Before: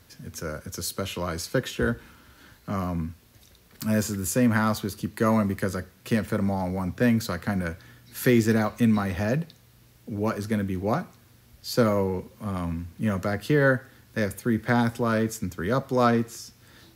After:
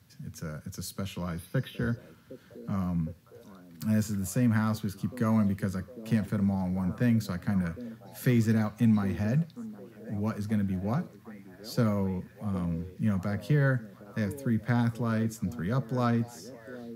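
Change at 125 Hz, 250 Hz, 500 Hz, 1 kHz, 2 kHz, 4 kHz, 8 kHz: 0.0 dB, -3.0 dB, -9.5 dB, -8.5 dB, -8.5 dB, -9.0 dB, -9.0 dB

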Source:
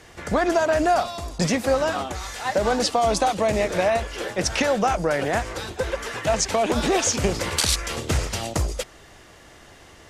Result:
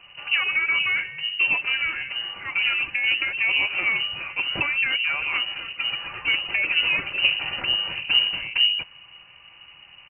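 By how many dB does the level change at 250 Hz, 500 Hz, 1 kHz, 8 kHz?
-19.0 dB, -23.0 dB, -13.0 dB, under -40 dB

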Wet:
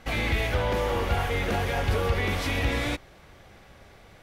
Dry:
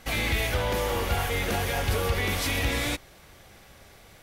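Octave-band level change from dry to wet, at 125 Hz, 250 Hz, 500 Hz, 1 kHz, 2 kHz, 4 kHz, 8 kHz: +1.5 dB, +1.5 dB, +1.5 dB, +1.0 dB, -0.5 dB, -3.0 dB, -8.0 dB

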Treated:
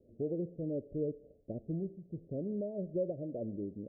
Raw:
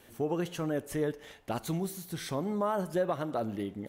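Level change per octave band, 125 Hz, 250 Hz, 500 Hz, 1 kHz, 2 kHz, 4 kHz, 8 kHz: -4.0 dB, -4.0 dB, -5.0 dB, under -20 dB, under -40 dB, under -40 dB, under -35 dB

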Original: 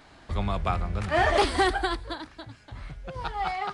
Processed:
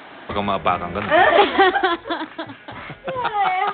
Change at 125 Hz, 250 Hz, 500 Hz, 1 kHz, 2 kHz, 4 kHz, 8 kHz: -3.5 dB, +8.0 dB, +9.5 dB, +9.5 dB, +9.5 dB, +7.5 dB, under -35 dB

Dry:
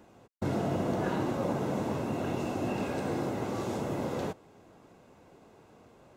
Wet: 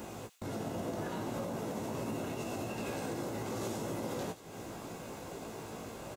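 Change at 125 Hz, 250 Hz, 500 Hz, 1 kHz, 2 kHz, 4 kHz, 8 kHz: -6.5 dB, -6.5 dB, -5.5 dB, -5.5 dB, -4.0 dB, -0.5 dB, +3.5 dB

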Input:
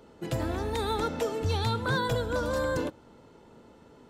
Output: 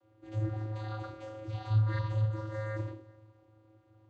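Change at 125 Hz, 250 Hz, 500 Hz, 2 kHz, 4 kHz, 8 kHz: +2.0 dB, -10.0 dB, -13.0 dB, -13.0 dB, under -15 dB, under -20 dB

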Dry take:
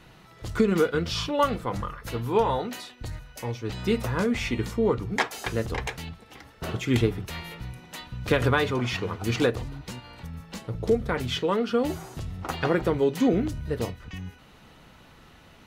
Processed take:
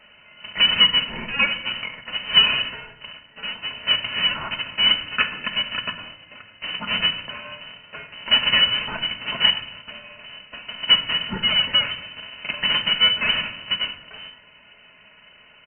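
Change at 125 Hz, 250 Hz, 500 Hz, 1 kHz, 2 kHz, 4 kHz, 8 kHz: -12.0 dB, -11.5 dB, -14.0 dB, -1.5 dB, +9.5 dB, +20.5 dB, under -35 dB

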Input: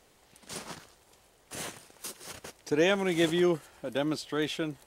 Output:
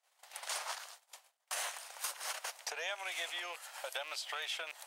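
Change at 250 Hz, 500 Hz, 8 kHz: -39.5 dB, -18.5 dB, +1.0 dB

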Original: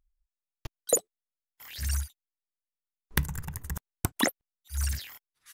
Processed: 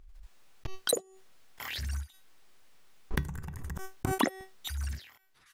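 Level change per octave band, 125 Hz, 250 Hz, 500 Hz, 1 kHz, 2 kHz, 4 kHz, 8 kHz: -3.5 dB, -0.5 dB, -2.0 dB, +2.0 dB, -3.0 dB, 0.0 dB, -7.5 dB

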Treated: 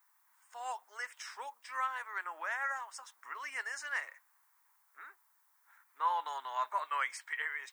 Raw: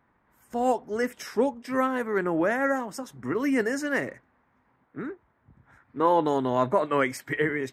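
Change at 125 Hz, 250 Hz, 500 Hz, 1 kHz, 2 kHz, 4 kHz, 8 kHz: under -40 dB, under -40 dB, -26.5 dB, -8.0 dB, -6.5 dB, -6.0 dB, -6.5 dB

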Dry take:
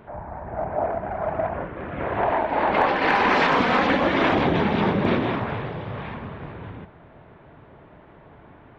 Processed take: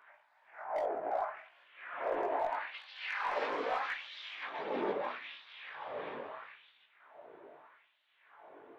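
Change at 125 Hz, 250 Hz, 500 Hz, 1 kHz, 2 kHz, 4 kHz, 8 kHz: -35.5 dB, -23.5 dB, -13.5 dB, -14.5 dB, -15.5 dB, -14.5 dB, no reading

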